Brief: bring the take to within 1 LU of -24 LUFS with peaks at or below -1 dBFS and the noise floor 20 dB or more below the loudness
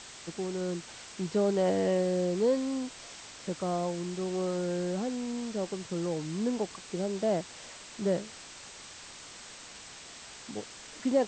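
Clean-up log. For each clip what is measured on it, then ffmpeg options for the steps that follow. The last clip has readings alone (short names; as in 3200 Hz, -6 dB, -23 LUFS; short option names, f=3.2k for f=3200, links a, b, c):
noise floor -48 dBFS; noise floor target -52 dBFS; loudness -32.0 LUFS; peak -15.5 dBFS; loudness target -24.0 LUFS
-> -af "afftdn=nr=6:nf=-48"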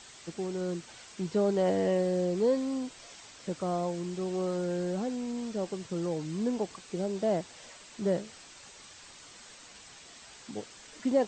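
noise floor -52 dBFS; loudness -32.0 LUFS; peak -15.5 dBFS; loudness target -24.0 LUFS
-> -af "volume=8dB"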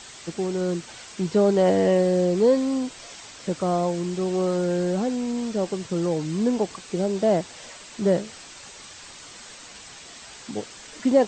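loudness -24.0 LUFS; peak -7.5 dBFS; noise floor -44 dBFS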